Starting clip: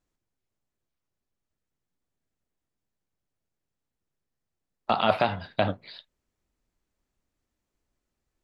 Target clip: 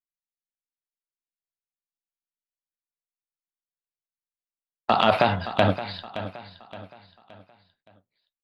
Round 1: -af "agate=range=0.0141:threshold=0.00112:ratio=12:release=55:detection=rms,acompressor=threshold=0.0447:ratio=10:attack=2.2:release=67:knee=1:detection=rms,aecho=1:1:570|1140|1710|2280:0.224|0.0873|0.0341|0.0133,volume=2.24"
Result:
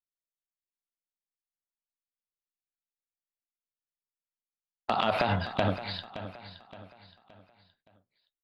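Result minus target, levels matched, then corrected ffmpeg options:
compression: peak gain reduction +8.5 dB
-af "agate=range=0.0141:threshold=0.00112:ratio=12:release=55:detection=rms,acompressor=threshold=0.133:ratio=10:attack=2.2:release=67:knee=1:detection=rms,aecho=1:1:570|1140|1710|2280:0.224|0.0873|0.0341|0.0133,volume=2.24"

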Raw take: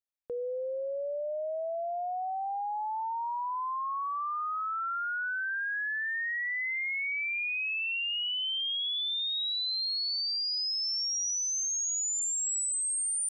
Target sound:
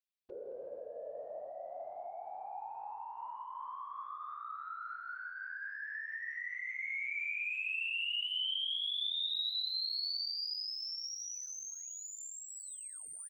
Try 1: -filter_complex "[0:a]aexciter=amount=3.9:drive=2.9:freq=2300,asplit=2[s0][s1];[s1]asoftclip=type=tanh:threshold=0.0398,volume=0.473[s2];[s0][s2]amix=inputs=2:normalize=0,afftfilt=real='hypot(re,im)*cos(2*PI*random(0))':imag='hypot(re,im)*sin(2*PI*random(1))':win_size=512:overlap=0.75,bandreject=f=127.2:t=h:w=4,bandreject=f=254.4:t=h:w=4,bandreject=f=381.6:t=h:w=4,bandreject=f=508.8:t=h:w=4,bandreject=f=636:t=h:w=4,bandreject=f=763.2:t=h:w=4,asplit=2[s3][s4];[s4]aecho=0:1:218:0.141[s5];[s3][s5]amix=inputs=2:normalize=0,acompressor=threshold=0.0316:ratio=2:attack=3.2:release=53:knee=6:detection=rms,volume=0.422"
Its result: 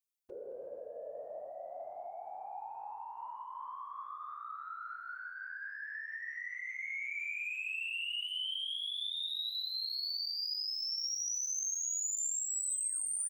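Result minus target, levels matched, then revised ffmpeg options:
8 kHz band +8.5 dB
-filter_complex "[0:a]aexciter=amount=3.9:drive=2.9:freq=2300,asplit=2[s0][s1];[s1]asoftclip=type=tanh:threshold=0.0398,volume=0.473[s2];[s0][s2]amix=inputs=2:normalize=0,afftfilt=real='hypot(re,im)*cos(2*PI*random(0))':imag='hypot(re,im)*sin(2*PI*random(1))':win_size=512:overlap=0.75,bandreject=f=127.2:t=h:w=4,bandreject=f=254.4:t=h:w=4,bandreject=f=381.6:t=h:w=4,bandreject=f=508.8:t=h:w=4,bandreject=f=636:t=h:w=4,bandreject=f=763.2:t=h:w=4,asplit=2[s3][s4];[s4]aecho=0:1:218:0.141[s5];[s3][s5]amix=inputs=2:normalize=0,acompressor=threshold=0.0316:ratio=2:attack=3.2:release=53:knee=6:detection=rms,highshelf=f=5400:t=q:w=1.5:g=-9,volume=0.422"

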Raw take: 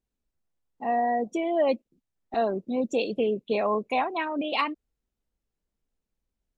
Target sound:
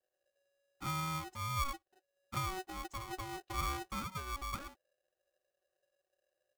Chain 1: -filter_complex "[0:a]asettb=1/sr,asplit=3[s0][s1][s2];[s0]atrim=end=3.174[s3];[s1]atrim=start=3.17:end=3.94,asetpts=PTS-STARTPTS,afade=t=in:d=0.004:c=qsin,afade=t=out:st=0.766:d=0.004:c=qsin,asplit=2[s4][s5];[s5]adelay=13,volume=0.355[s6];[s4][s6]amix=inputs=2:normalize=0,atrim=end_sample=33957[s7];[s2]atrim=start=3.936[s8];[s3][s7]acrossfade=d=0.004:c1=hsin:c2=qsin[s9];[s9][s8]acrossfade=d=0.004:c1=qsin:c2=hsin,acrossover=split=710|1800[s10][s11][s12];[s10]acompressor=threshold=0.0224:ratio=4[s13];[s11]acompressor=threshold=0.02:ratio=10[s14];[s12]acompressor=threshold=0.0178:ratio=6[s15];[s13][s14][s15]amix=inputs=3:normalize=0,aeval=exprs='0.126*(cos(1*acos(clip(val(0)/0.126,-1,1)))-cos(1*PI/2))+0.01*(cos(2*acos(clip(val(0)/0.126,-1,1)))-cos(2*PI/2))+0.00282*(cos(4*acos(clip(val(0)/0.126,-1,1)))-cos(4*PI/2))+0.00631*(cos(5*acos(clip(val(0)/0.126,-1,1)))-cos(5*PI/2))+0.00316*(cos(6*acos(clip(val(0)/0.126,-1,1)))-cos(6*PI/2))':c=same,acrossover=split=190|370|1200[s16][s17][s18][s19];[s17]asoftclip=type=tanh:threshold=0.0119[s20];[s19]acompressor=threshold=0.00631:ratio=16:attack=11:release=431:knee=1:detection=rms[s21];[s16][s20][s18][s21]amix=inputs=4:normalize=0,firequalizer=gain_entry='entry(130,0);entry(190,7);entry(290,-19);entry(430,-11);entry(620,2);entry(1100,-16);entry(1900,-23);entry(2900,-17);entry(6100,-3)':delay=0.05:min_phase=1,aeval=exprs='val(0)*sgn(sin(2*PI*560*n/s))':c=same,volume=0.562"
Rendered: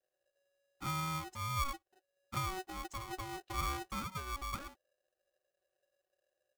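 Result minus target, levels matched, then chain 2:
compression: peak gain reduction -6.5 dB
-filter_complex "[0:a]asettb=1/sr,asplit=3[s0][s1][s2];[s0]atrim=end=3.174[s3];[s1]atrim=start=3.17:end=3.94,asetpts=PTS-STARTPTS,afade=t=in:d=0.004:c=qsin,afade=t=out:st=0.766:d=0.004:c=qsin,asplit=2[s4][s5];[s5]adelay=13,volume=0.355[s6];[s4][s6]amix=inputs=2:normalize=0,atrim=end_sample=33957[s7];[s2]atrim=start=3.936[s8];[s3][s7]acrossfade=d=0.004:c1=hsin:c2=qsin[s9];[s9][s8]acrossfade=d=0.004:c1=qsin:c2=hsin,acrossover=split=710|1800[s10][s11][s12];[s10]acompressor=threshold=0.0224:ratio=4[s13];[s11]acompressor=threshold=0.02:ratio=10[s14];[s12]acompressor=threshold=0.0178:ratio=6[s15];[s13][s14][s15]amix=inputs=3:normalize=0,aeval=exprs='0.126*(cos(1*acos(clip(val(0)/0.126,-1,1)))-cos(1*PI/2))+0.01*(cos(2*acos(clip(val(0)/0.126,-1,1)))-cos(2*PI/2))+0.00282*(cos(4*acos(clip(val(0)/0.126,-1,1)))-cos(4*PI/2))+0.00631*(cos(5*acos(clip(val(0)/0.126,-1,1)))-cos(5*PI/2))+0.00316*(cos(6*acos(clip(val(0)/0.126,-1,1)))-cos(6*PI/2))':c=same,acrossover=split=190|370|1200[s16][s17][s18][s19];[s17]asoftclip=type=tanh:threshold=0.0119[s20];[s19]acompressor=threshold=0.00282:ratio=16:attack=11:release=431:knee=1:detection=rms[s21];[s16][s20][s18][s21]amix=inputs=4:normalize=0,firequalizer=gain_entry='entry(130,0);entry(190,7);entry(290,-19);entry(430,-11);entry(620,2);entry(1100,-16);entry(1900,-23);entry(2900,-17);entry(6100,-3)':delay=0.05:min_phase=1,aeval=exprs='val(0)*sgn(sin(2*PI*560*n/s))':c=same,volume=0.562"

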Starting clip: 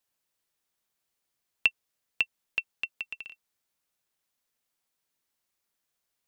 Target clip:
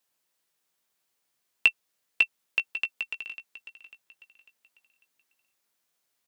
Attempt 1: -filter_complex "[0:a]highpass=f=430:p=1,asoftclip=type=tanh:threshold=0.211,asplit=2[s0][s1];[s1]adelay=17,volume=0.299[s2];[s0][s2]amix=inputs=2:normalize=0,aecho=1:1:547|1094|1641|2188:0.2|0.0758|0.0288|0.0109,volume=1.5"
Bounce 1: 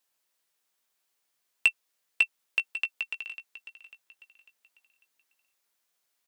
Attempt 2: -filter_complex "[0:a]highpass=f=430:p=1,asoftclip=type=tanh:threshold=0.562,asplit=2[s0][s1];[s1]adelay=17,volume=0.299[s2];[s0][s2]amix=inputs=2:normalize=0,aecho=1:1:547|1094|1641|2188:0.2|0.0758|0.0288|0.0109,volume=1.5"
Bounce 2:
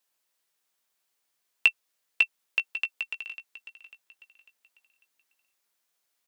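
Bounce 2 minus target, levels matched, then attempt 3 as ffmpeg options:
125 Hz band -6.5 dB
-filter_complex "[0:a]highpass=f=160:p=1,asoftclip=type=tanh:threshold=0.562,asplit=2[s0][s1];[s1]adelay=17,volume=0.299[s2];[s0][s2]amix=inputs=2:normalize=0,aecho=1:1:547|1094|1641|2188:0.2|0.0758|0.0288|0.0109,volume=1.5"

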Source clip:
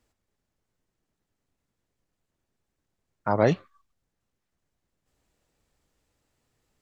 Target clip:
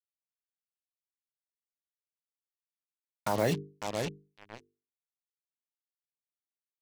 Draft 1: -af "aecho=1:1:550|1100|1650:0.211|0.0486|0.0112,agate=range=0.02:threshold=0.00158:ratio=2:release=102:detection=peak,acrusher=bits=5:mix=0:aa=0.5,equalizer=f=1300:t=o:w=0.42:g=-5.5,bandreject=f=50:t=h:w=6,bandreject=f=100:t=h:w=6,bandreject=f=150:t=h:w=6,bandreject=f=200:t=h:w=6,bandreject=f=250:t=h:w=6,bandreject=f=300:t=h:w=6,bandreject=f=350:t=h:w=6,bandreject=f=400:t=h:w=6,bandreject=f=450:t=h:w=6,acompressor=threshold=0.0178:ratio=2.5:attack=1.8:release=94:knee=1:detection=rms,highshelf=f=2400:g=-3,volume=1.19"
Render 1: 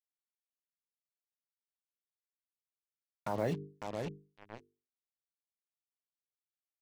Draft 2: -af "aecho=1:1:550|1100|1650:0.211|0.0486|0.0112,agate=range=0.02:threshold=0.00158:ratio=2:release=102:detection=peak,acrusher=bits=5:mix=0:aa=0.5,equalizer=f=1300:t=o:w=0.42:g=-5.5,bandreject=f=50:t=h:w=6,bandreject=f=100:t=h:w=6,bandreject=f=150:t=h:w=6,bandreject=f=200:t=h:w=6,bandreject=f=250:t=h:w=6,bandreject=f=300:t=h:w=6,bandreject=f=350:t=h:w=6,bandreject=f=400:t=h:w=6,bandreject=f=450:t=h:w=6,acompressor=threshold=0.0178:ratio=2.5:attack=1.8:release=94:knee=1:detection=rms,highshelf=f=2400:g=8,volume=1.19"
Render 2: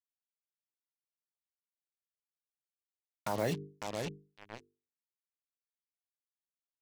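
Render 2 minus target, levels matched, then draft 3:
compression: peak gain reduction +5 dB
-af "aecho=1:1:550|1100|1650:0.211|0.0486|0.0112,agate=range=0.02:threshold=0.00158:ratio=2:release=102:detection=peak,acrusher=bits=5:mix=0:aa=0.5,equalizer=f=1300:t=o:w=0.42:g=-5.5,bandreject=f=50:t=h:w=6,bandreject=f=100:t=h:w=6,bandreject=f=150:t=h:w=6,bandreject=f=200:t=h:w=6,bandreject=f=250:t=h:w=6,bandreject=f=300:t=h:w=6,bandreject=f=350:t=h:w=6,bandreject=f=400:t=h:w=6,bandreject=f=450:t=h:w=6,acompressor=threshold=0.0447:ratio=2.5:attack=1.8:release=94:knee=1:detection=rms,highshelf=f=2400:g=8,volume=1.19"

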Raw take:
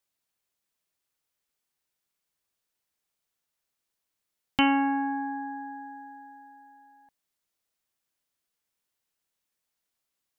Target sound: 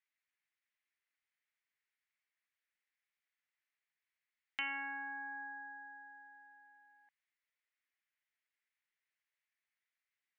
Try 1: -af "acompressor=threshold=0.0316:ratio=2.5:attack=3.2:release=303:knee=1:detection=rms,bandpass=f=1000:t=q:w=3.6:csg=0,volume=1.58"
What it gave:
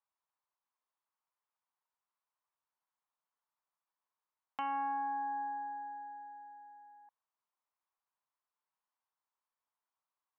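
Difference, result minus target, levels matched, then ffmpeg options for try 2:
2 kHz band -12.5 dB
-af "acompressor=threshold=0.0316:ratio=2.5:attack=3.2:release=303:knee=1:detection=rms,bandpass=f=2000:t=q:w=3.6:csg=0,volume=1.58"

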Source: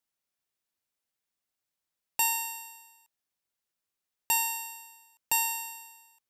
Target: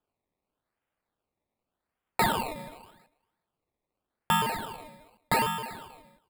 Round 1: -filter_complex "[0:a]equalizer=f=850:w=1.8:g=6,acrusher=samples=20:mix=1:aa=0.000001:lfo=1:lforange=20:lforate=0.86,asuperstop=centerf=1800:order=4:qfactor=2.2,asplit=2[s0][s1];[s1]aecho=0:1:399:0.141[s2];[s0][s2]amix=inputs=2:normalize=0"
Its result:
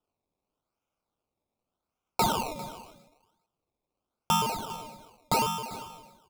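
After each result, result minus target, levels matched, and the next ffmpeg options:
echo-to-direct +10 dB; 2 kHz band -6.0 dB
-filter_complex "[0:a]equalizer=f=850:w=1.8:g=6,acrusher=samples=20:mix=1:aa=0.000001:lfo=1:lforange=20:lforate=0.86,asuperstop=centerf=1800:order=4:qfactor=2.2,asplit=2[s0][s1];[s1]aecho=0:1:399:0.0447[s2];[s0][s2]amix=inputs=2:normalize=0"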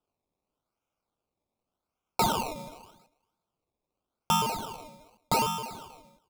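2 kHz band -6.0 dB
-filter_complex "[0:a]equalizer=f=850:w=1.8:g=6,acrusher=samples=20:mix=1:aa=0.000001:lfo=1:lforange=20:lforate=0.86,asuperstop=centerf=6000:order=4:qfactor=2.2,asplit=2[s0][s1];[s1]aecho=0:1:399:0.0447[s2];[s0][s2]amix=inputs=2:normalize=0"

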